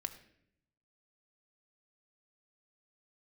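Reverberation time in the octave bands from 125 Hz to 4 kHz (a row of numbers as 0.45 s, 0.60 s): 1.2 s, 1.0 s, 0.80 s, 0.60 s, 0.70 s, 0.55 s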